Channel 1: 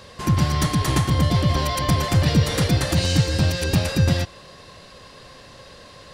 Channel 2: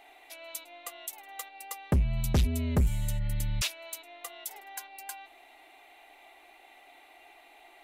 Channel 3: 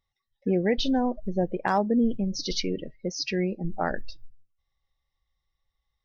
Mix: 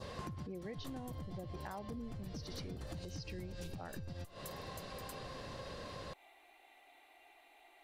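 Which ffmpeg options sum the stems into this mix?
-filter_complex "[0:a]highshelf=f=4k:g=-9,volume=0.5dB[a];[1:a]alimiter=level_in=1.5dB:limit=-24dB:level=0:latency=1:release=138,volume=-1.5dB,volume=-8dB[b];[2:a]volume=-12dB,asplit=2[c][d];[d]apad=whole_len=270535[e];[a][e]sidechaincompress=threshold=-57dB:ratio=4:attack=48:release=223[f];[f][b]amix=inputs=2:normalize=0,adynamicequalizer=threshold=0.00251:dfrequency=2100:dqfactor=0.99:tfrequency=2100:tqfactor=0.99:attack=5:release=100:ratio=0.375:range=2.5:mode=cutabove:tftype=bell,acompressor=threshold=-34dB:ratio=6,volume=0dB[g];[c][g]amix=inputs=2:normalize=0,acompressor=threshold=-42dB:ratio=6"

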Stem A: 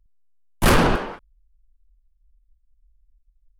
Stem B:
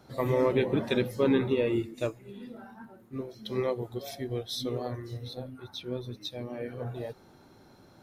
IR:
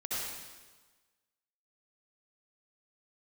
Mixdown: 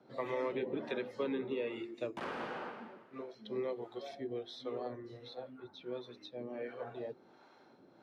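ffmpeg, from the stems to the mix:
-filter_complex "[0:a]acompressor=threshold=-25dB:ratio=6,adelay=1550,volume=-12.5dB,asplit=2[a][b];[b]volume=-5dB[c];[1:a]bandreject=f=50:t=h:w=6,bandreject=f=100:t=h:w=6,bandreject=f=150:t=h:w=6,bandreject=f=200:t=h:w=6,bandreject=f=250:t=h:w=6,bandreject=f=300:t=h:w=6,bandreject=f=350:t=h:w=6,bandreject=f=400:t=h:w=6,acrossover=split=520[d][e];[d]aeval=exprs='val(0)*(1-0.7/2+0.7/2*cos(2*PI*1.4*n/s))':c=same[f];[e]aeval=exprs='val(0)*(1-0.7/2-0.7/2*cos(2*PI*1.4*n/s))':c=same[g];[f][g]amix=inputs=2:normalize=0,volume=0.5dB,asplit=2[h][i];[i]apad=whole_len=226899[j];[a][j]sidechaingate=range=-33dB:threshold=-51dB:ratio=16:detection=peak[k];[2:a]atrim=start_sample=2205[l];[c][l]afir=irnorm=-1:irlink=0[m];[k][h][m]amix=inputs=3:normalize=0,acrossover=split=340|1900[n][o][p];[n]acompressor=threshold=-38dB:ratio=4[q];[o]acompressor=threshold=-37dB:ratio=4[r];[p]acompressor=threshold=-47dB:ratio=4[s];[q][r][s]amix=inputs=3:normalize=0,highpass=260,lowpass=3.5k"

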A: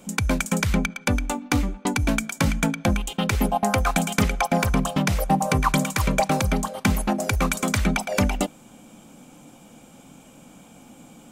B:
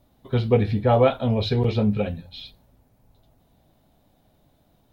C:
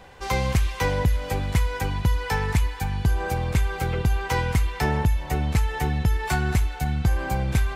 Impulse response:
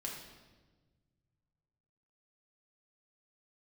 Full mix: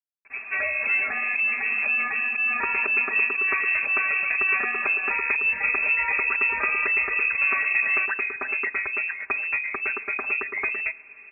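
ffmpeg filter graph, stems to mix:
-filter_complex "[0:a]adelay=2450,volume=-3.5dB,asplit=2[a][b];[b]volume=-21dB[c];[1:a]volume=-13dB[d];[2:a]alimiter=limit=-21.5dB:level=0:latency=1:release=34,adelay=300,volume=1.5dB[e];[a][d]amix=inputs=2:normalize=0,acrusher=bits=8:mix=0:aa=0.000001,acompressor=threshold=-27dB:ratio=6,volume=0dB[f];[3:a]atrim=start_sample=2205[g];[c][g]afir=irnorm=-1:irlink=0[h];[e][f][h]amix=inputs=3:normalize=0,aecho=1:1:5.3:0.89,lowpass=f=2.3k:t=q:w=0.5098,lowpass=f=2.3k:t=q:w=0.6013,lowpass=f=2.3k:t=q:w=0.9,lowpass=f=2.3k:t=q:w=2.563,afreqshift=-2700"

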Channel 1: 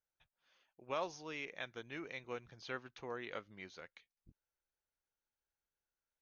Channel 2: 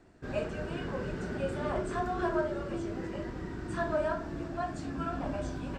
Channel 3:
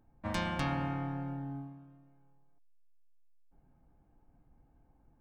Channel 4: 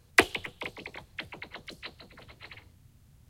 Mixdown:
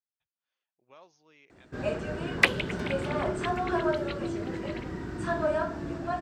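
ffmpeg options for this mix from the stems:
-filter_complex "[0:a]volume=-15dB[a];[1:a]adelay=1500,volume=3dB[b];[2:a]adelay=2450,volume=-9dB[c];[3:a]equalizer=f=2.6k:w=0.4:g=12,adelay=2250,volume=-11dB[d];[a][b][c][d]amix=inputs=4:normalize=0,highpass=57"

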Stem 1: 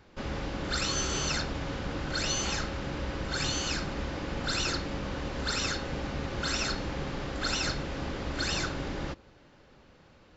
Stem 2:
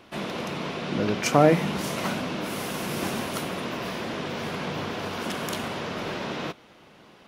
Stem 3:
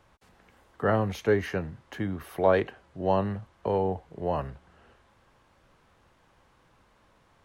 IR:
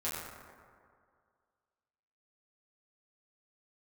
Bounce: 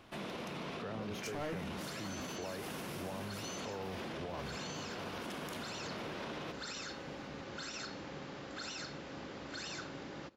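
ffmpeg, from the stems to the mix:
-filter_complex "[0:a]highpass=150,adelay=1150,volume=-9.5dB[a];[1:a]asoftclip=type=hard:threshold=-20dB,volume=-7.5dB[b];[2:a]acompressor=threshold=-28dB:ratio=6,volume=-2.5dB[c];[a][b][c]amix=inputs=3:normalize=0,asoftclip=type=hard:threshold=-23dB,alimiter=level_in=10dB:limit=-24dB:level=0:latency=1:release=39,volume=-10dB"

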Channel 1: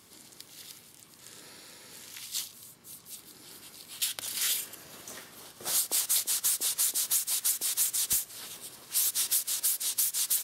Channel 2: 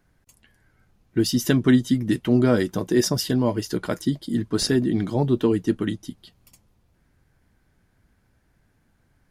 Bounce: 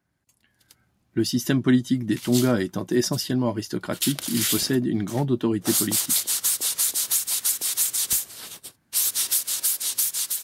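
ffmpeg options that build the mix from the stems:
-filter_complex "[0:a]agate=range=-36dB:threshold=-43dB:ratio=16:detection=peak,volume=-2dB[a];[1:a]highpass=88,equalizer=f=460:w=7.6:g=-9.5,volume=-8.5dB[b];[a][b]amix=inputs=2:normalize=0,dynaudnorm=f=390:g=3:m=7dB"

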